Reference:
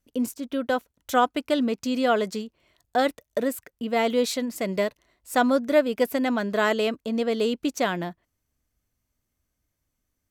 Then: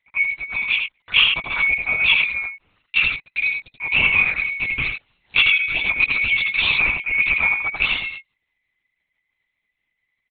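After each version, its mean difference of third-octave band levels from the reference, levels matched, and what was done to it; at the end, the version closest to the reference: 15.0 dB: band-swap scrambler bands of 2000 Hz; comb 4.1 ms, depth 82%; echo 86 ms -5 dB; LPC vocoder at 8 kHz whisper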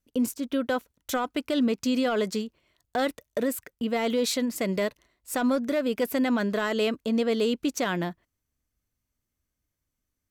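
2.5 dB: in parallel at -12 dB: wavefolder -17.5 dBFS; on the sum: gate -48 dBFS, range -6 dB; limiter -17.5 dBFS, peak gain reduction 9.5 dB; bell 710 Hz -3 dB 0.66 oct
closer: second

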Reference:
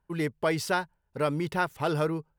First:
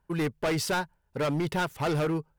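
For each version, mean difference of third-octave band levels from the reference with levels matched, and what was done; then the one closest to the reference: 3.5 dB: hard clip -27.5 dBFS, distortion -8 dB; gain +3.5 dB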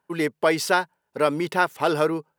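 2.5 dB: HPF 260 Hz 12 dB/oct; gain +7 dB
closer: second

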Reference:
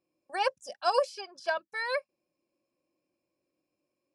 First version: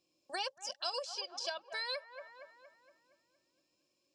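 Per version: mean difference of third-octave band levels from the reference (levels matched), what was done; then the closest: 6.0 dB: band shelf 4700 Hz +13 dB; on a send: band-limited delay 0.233 s, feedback 49%, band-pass 980 Hz, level -16 dB; on the sum: compressor 4:1, threshold -38 dBFS, peak gain reduction 16.5 dB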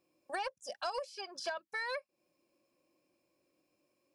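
4.5 dB: low shelf 410 Hz -3.5 dB; compressor 6:1, threshold -42 dBFS, peak gain reduction 19.5 dB; soft clip -33 dBFS, distortion -23 dB; gain +6.5 dB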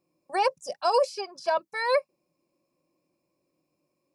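2.0 dB: thirty-one-band EQ 160 Hz +9 dB, 1000 Hz +4 dB, 1600 Hz -7 dB, 3150 Hz -7 dB; limiter -21.5 dBFS, peak gain reduction 9.5 dB; dynamic EQ 430 Hz, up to +5 dB, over -46 dBFS, Q 1.5; gain +5.5 dB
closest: third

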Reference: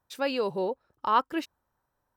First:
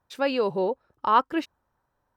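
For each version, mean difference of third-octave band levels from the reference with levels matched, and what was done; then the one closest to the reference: 1.5 dB: high shelf 5400 Hz -10 dB; gain +4 dB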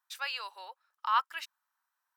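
9.0 dB: HPF 1100 Hz 24 dB/oct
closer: first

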